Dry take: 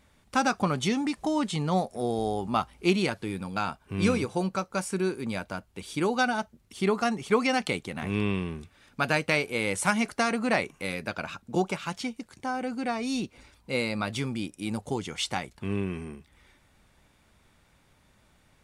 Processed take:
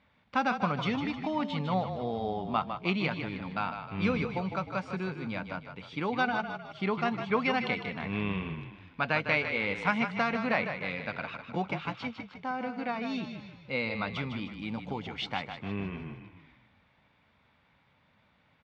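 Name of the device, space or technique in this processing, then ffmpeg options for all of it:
frequency-shifting delay pedal into a guitar cabinet: -filter_complex "[0:a]asplit=7[s0][s1][s2][s3][s4][s5][s6];[s1]adelay=154,afreqshift=-31,volume=0.398[s7];[s2]adelay=308,afreqshift=-62,volume=0.191[s8];[s3]adelay=462,afreqshift=-93,volume=0.0912[s9];[s4]adelay=616,afreqshift=-124,volume=0.0442[s10];[s5]adelay=770,afreqshift=-155,volume=0.0211[s11];[s6]adelay=924,afreqshift=-186,volume=0.0101[s12];[s0][s7][s8][s9][s10][s11][s12]amix=inputs=7:normalize=0,highpass=96,equalizer=f=360:t=q:w=4:g=-8,equalizer=f=980:t=q:w=4:g=3,equalizer=f=2200:t=q:w=4:g=3,lowpass=f=3900:w=0.5412,lowpass=f=3900:w=1.3066,volume=0.668"

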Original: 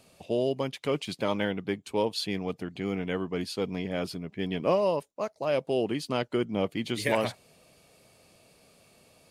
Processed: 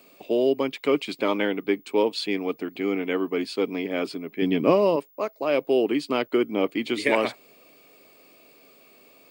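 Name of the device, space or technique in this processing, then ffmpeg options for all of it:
old television with a line whistle: -filter_complex "[0:a]asettb=1/sr,asplit=3[s0][s1][s2];[s0]atrim=end=4.424[s3];[s1]atrim=start=4.42:end=4.96,asetpts=PTS-STARTPTS,afade=t=in:d=0.004:c=qsin,afade=t=out:st=0.536:d=0.004:c=qsin,bass=f=250:g=13,treble=f=4000:g=2[s4];[s2]atrim=start=4.956[s5];[s3][s4]acrossfade=d=0.004:c1=hsin:c2=qsin[s6];[s6][s5]acrossfade=d=0.004:c1=qsin:c2=hsin,highpass=f=170:w=0.5412,highpass=f=170:w=1.3066,equalizer=f=180:t=q:w=4:g=-8,equalizer=f=290:t=q:w=4:g=7,equalizer=f=410:t=q:w=4:g=5,equalizer=f=1200:t=q:w=4:g=4,equalizer=f=2300:t=q:w=4:g=6,equalizer=f=6100:t=q:w=4:g=-6,lowpass=f=8700:w=0.5412,lowpass=f=8700:w=1.3066,aeval=exprs='val(0)+0.00126*sin(2*PI*15625*n/s)':c=same,volume=1.33"

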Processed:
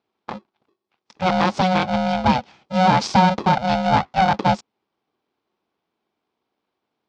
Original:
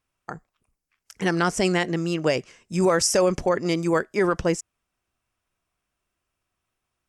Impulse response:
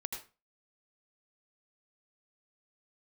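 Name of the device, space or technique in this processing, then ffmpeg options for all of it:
ring modulator pedal into a guitar cabinet: -af "aeval=exprs='val(0)*sgn(sin(2*PI*370*n/s))':c=same,highpass=82,equalizer=f=210:t=q:w=4:g=7,equalizer=f=820:t=q:w=4:g=6,equalizer=f=1800:t=q:w=4:g=-8,equalizer=f=2800:t=q:w=4:g=-4,lowpass=f=4500:w=0.5412,lowpass=f=4500:w=1.3066,volume=1.41"

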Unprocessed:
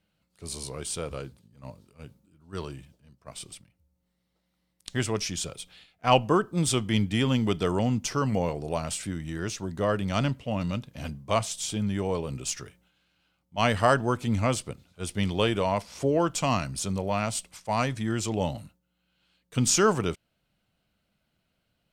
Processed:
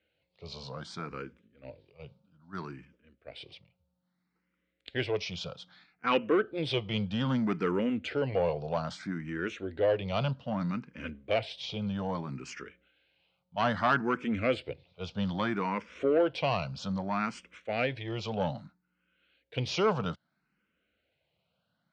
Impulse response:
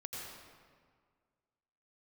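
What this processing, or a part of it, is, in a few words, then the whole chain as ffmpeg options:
barber-pole phaser into a guitar amplifier: -filter_complex "[0:a]asplit=2[s0][s1];[s1]afreqshift=0.62[s2];[s0][s2]amix=inputs=2:normalize=1,asoftclip=type=tanh:threshold=0.1,highpass=90,equalizer=f=110:t=q:w=4:g=-5,equalizer=f=500:t=q:w=4:g=5,equalizer=f=1500:t=q:w=4:g=5,equalizer=f=2300:t=q:w=4:g=4,lowpass=f=4400:w=0.5412,lowpass=f=4400:w=1.3066"

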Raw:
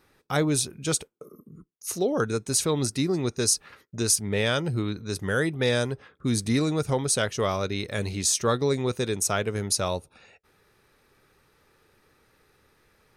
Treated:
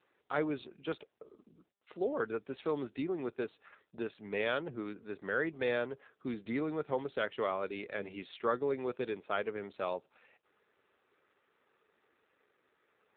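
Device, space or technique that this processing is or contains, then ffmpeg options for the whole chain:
telephone: -af "highpass=310,lowpass=3400,volume=0.501" -ar 8000 -c:a libopencore_amrnb -b:a 7400

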